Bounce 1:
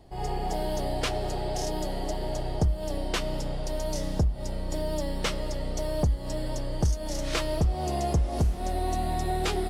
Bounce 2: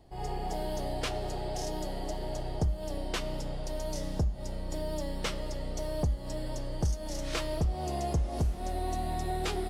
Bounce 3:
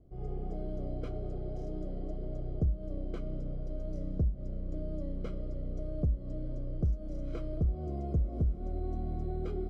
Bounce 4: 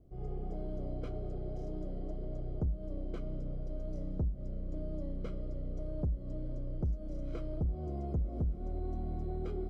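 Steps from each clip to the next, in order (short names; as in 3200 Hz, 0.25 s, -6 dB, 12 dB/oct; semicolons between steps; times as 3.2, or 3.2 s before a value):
de-hum 199.5 Hz, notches 38; gain -4.5 dB
running mean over 49 samples
soft clip -25.5 dBFS, distortion -17 dB; gain -1 dB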